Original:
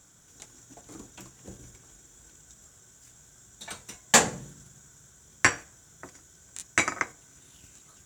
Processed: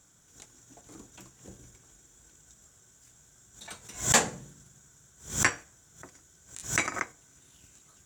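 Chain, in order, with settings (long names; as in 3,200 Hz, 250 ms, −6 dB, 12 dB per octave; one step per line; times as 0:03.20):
background raised ahead of every attack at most 140 dB per second
level −4 dB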